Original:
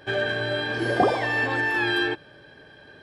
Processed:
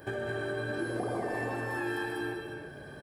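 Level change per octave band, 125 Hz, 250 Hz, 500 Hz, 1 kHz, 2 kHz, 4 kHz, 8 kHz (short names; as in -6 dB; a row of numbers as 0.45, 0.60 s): -5.5 dB, -6.0 dB, -7.5 dB, -10.5 dB, -12.0 dB, -17.0 dB, n/a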